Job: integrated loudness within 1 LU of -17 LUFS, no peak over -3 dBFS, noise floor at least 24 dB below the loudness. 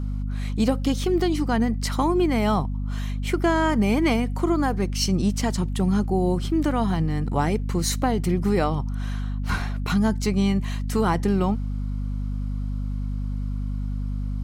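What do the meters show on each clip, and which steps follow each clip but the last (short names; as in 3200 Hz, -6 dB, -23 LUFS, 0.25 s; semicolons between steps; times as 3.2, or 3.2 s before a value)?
hum 50 Hz; harmonics up to 250 Hz; hum level -24 dBFS; loudness -24.5 LUFS; peak -8.5 dBFS; loudness target -17.0 LUFS
-> notches 50/100/150/200/250 Hz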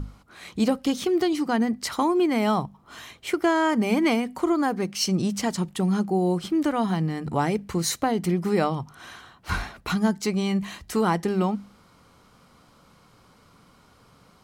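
hum none; loudness -25.0 LUFS; peak -10.0 dBFS; loudness target -17.0 LUFS
-> gain +8 dB; limiter -3 dBFS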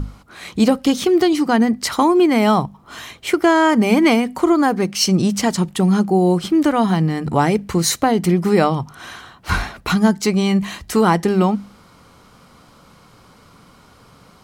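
loudness -17.0 LUFS; peak -3.0 dBFS; noise floor -49 dBFS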